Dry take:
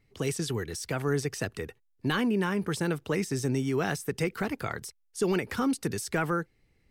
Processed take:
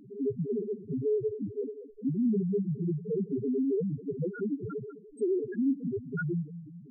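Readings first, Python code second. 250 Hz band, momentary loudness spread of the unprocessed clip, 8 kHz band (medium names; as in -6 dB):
0.0 dB, 8 LU, under -30 dB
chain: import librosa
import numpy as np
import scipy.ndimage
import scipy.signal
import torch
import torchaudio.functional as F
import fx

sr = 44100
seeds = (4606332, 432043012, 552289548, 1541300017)

p1 = fx.bin_compress(x, sr, power=0.4)
p2 = fx.echo_feedback(p1, sr, ms=204, feedback_pct=49, wet_db=-13)
p3 = np.sign(p2) * np.maximum(np.abs(p2) - 10.0 ** (-41.0 / 20.0), 0.0)
p4 = p2 + F.gain(torch.from_numpy(p3), -5.0).numpy()
y = fx.spec_topn(p4, sr, count=1)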